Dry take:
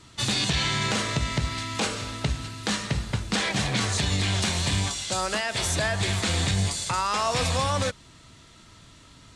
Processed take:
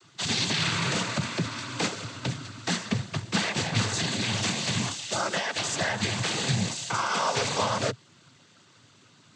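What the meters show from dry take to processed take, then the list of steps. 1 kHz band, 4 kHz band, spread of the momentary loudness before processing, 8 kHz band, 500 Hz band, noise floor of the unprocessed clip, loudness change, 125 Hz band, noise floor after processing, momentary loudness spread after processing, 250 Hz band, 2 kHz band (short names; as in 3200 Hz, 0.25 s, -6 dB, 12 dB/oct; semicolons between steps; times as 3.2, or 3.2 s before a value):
-1.5 dB, -1.5 dB, 5 LU, -2.0 dB, -1.5 dB, -52 dBFS, -2.0 dB, -4.0 dB, -58 dBFS, 6 LU, -1.0 dB, -1.0 dB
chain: added harmonics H 7 -25 dB, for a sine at -13.5 dBFS; noise vocoder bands 16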